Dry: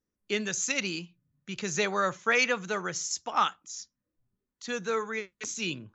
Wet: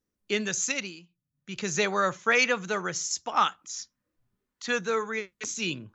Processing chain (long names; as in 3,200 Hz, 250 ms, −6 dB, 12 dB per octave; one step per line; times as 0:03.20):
0:00.65–0:01.61: duck −13.5 dB, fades 0.30 s
0:03.59–0:04.81: parametric band 1,500 Hz +6.5 dB 2.6 octaves
level +2 dB